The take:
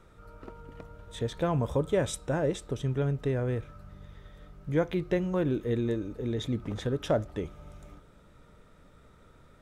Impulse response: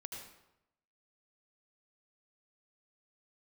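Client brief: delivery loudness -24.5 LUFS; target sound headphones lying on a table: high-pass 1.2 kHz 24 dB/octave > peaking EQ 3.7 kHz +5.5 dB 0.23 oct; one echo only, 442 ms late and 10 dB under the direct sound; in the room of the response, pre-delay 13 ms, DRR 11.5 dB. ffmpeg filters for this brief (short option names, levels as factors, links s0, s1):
-filter_complex "[0:a]aecho=1:1:442:0.316,asplit=2[s0][s1];[1:a]atrim=start_sample=2205,adelay=13[s2];[s1][s2]afir=irnorm=-1:irlink=0,volume=0.355[s3];[s0][s3]amix=inputs=2:normalize=0,highpass=f=1200:w=0.5412,highpass=f=1200:w=1.3066,equalizer=f=3700:t=o:w=0.23:g=5.5,volume=7.5"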